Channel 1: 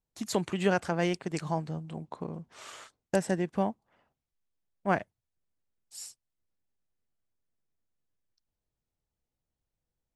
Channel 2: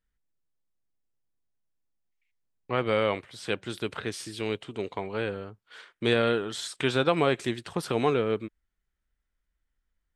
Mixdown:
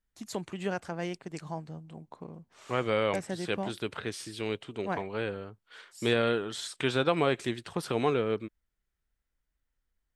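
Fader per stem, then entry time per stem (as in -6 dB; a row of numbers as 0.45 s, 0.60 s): -6.5 dB, -2.5 dB; 0.00 s, 0.00 s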